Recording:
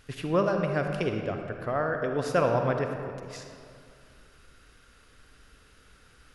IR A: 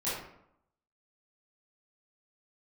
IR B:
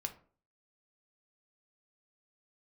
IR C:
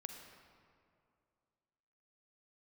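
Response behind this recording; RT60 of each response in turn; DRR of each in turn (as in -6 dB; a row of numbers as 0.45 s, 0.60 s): C; 0.75 s, 0.45 s, 2.4 s; -12.5 dB, 5.5 dB, 4.0 dB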